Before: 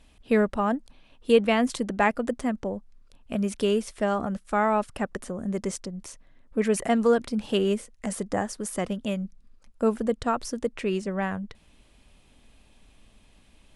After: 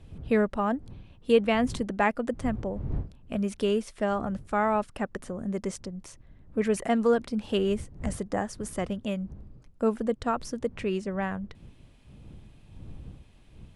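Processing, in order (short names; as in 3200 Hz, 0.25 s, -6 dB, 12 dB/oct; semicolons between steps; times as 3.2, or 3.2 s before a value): wind noise 120 Hz -41 dBFS; high shelf 5700 Hz -5.5 dB; gain -2 dB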